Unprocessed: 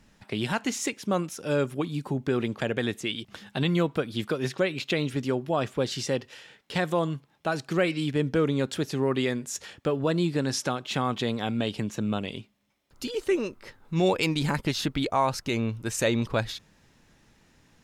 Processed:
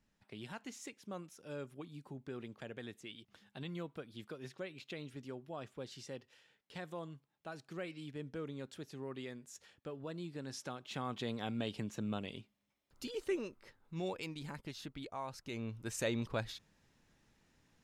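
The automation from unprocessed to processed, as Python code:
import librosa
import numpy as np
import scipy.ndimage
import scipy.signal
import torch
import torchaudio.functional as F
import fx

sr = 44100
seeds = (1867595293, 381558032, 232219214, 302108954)

y = fx.gain(x, sr, db=fx.line((10.28, -19.0), (11.4, -10.5), (13.23, -10.5), (14.38, -19.0), (15.28, -19.0), (15.84, -11.0)))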